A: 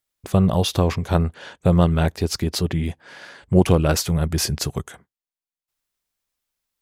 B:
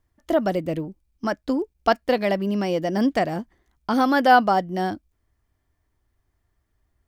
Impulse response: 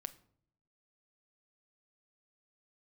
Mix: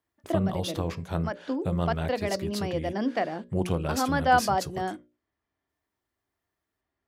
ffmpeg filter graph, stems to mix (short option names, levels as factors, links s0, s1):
-filter_complex "[0:a]flanger=delay=4.6:depth=1.5:regen=86:speed=0.46:shape=sinusoidal,volume=0.501,asplit=2[s0][s1];[1:a]acrossover=split=190 5500:gain=0.224 1 0.0891[s2][s3][s4];[s2][s3][s4]amix=inputs=3:normalize=0,volume=0.562[s5];[s1]apad=whole_len=311850[s6];[s5][s6]sidechaincompress=threshold=0.0398:ratio=8:attack=31:release=429[s7];[s0][s7]amix=inputs=2:normalize=0,highpass=58,bandreject=f=60:t=h:w=6,bandreject=f=120:t=h:w=6,bandreject=f=180:t=h:w=6,bandreject=f=240:t=h:w=6,bandreject=f=300:t=h:w=6,bandreject=f=360:t=h:w=6,bandreject=f=420:t=h:w=6,bandreject=f=480:t=h:w=6,bandreject=f=540:t=h:w=6,bandreject=f=600:t=h:w=6"